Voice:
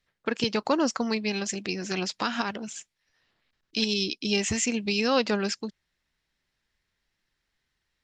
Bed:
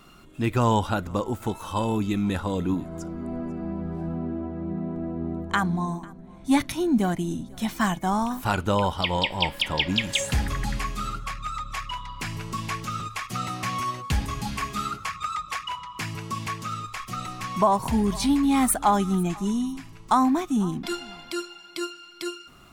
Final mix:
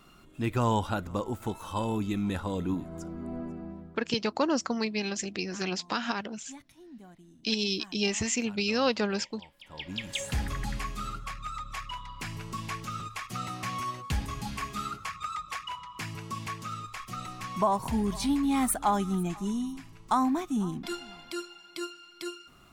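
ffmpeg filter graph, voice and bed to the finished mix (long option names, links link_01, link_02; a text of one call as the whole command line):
ffmpeg -i stem1.wav -i stem2.wav -filter_complex "[0:a]adelay=3700,volume=-2.5dB[link_01];[1:a]volume=16.5dB,afade=type=out:start_time=3.42:duration=0.58:silence=0.0794328,afade=type=in:start_time=9.62:duration=0.81:silence=0.0841395[link_02];[link_01][link_02]amix=inputs=2:normalize=0" out.wav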